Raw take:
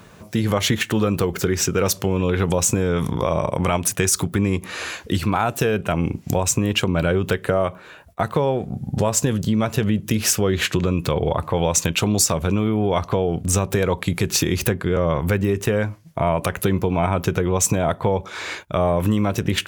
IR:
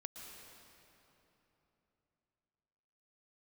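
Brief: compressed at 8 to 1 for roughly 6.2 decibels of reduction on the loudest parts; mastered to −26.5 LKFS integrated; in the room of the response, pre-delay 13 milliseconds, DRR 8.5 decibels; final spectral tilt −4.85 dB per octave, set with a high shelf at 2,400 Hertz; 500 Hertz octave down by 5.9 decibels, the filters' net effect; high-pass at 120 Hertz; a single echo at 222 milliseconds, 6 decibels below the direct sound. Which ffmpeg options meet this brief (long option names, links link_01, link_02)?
-filter_complex "[0:a]highpass=120,equalizer=frequency=500:width_type=o:gain=-7,highshelf=frequency=2400:gain=-8.5,acompressor=threshold=-24dB:ratio=8,aecho=1:1:222:0.501,asplit=2[link_01][link_02];[1:a]atrim=start_sample=2205,adelay=13[link_03];[link_02][link_03]afir=irnorm=-1:irlink=0,volume=-5dB[link_04];[link_01][link_04]amix=inputs=2:normalize=0,volume=2dB"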